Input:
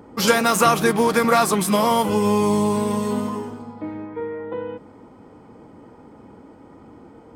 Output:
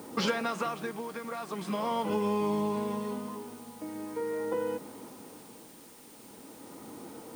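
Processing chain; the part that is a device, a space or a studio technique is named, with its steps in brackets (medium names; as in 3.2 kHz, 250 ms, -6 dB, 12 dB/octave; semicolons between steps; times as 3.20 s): medium wave at night (band-pass 160–4000 Hz; compression 4:1, threshold -27 dBFS, peak gain reduction 13.5 dB; tremolo 0.42 Hz, depth 70%; whistle 9 kHz -60 dBFS; white noise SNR 21 dB)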